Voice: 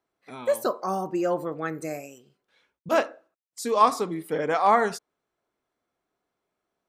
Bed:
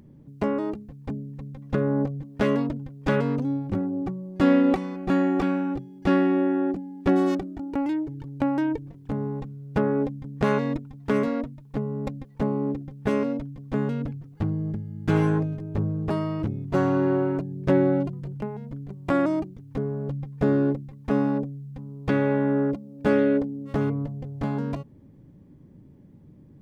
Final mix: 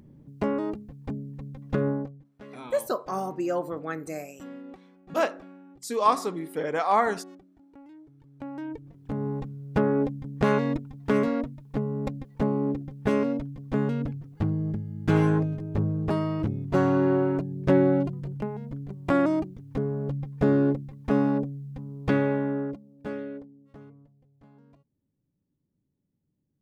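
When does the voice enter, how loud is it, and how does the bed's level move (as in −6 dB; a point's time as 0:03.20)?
2.25 s, −2.5 dB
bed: 0:01.88 −1.5 dB
0:02.33 −23.5 dB
0:07.90 −23.5 dB
0:09.29 0 dB
0:22.12 0 dB
0:24.16 −28 dB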